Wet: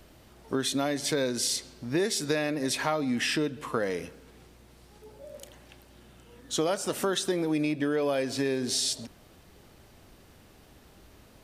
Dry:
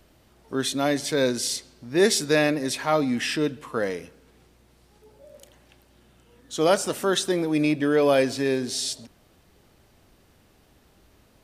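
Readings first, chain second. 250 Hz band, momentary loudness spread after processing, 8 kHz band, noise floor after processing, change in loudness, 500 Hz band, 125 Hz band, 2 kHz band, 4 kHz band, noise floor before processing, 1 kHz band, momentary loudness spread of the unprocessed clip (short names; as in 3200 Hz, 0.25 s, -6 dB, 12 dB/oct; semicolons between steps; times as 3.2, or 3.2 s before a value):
-4.5 dB, 9 LU, -2.0 dB, -56 dBFS, -5.0 dB, -6.5 dB, -4.0 dB, -5.0 dB, -2.5 dB, -59 dBFS, -5.5 dB, 9 LU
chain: compressor 8:1, threshold -28 dBFS, peak gain reduction 14 dB; gain +3.5 dB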